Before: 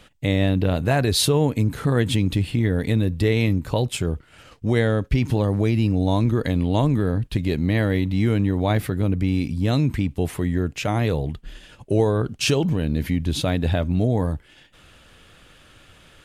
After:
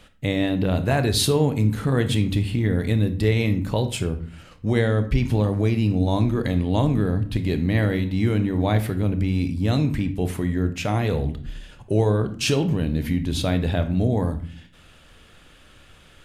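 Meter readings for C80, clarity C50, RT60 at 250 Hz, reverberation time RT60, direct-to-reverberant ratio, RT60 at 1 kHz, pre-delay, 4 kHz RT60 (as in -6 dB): 17.0 dB, 13.0 dB, 0.80 s, 0.50 s, 9.0 dB, 0.45 s, 23 ms, 0.35 s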